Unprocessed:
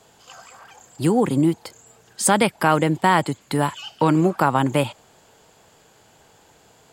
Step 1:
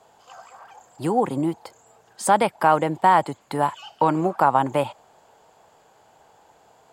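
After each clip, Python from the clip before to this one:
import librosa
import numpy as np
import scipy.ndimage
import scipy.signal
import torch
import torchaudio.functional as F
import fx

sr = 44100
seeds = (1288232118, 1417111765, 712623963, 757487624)

y = fx.peak_eq(x, sr, hz=800.0, db=12.0, octaves=1.6)
y = y * 10.0 ** (-8.5 / 20.0)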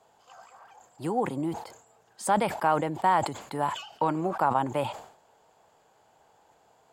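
y = fx.sustainer(x, sr, db_per_s=97.0)
y = y * 10.0 ** (-7.0 / 20.0)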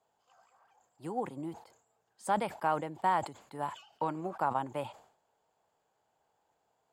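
y = fx.upward_expand(x, sr, threshold_db=-39.0, expansion=1.5)
y = y * 10.0 ** (-5.0 / 20.0)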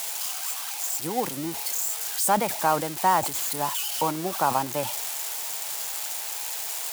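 y = x + 0.5 * 10.0 ** (-27.0 / 20.0) * np.diff(np.sign(x), prepend=np.sign(x[:1]))
y = y * 10.0 ** (7.5 / 20.0)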